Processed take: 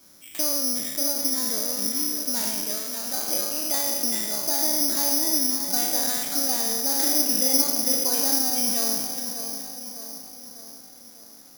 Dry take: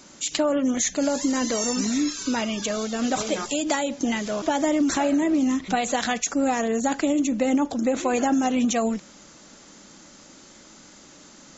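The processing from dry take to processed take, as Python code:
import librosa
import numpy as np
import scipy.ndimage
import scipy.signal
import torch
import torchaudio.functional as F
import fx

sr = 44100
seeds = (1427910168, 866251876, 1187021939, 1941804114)

y = fx.spec_trails(x, sr, decay_s=1.38)
y = fx.highpass(y, sr, hz=650.0, slope=6, at=(2.78, 3.28))
y = fx.doubler(y, sr, ms=47.0, db=-3, at=(6.94, 7.97))
y = fx.echo_split(y, sr, split_hz=1500.0, low_ms=599, high_ms=418, feedback_pct=52, wet_db=-8.5)
y = (np.kron(scipy.signal.resample_poly(y, 1, 8), np.eye(8)[0]) * 8)[:len(y)]
y = F.gain(torch.from_numpy(y), -13.0).numpy()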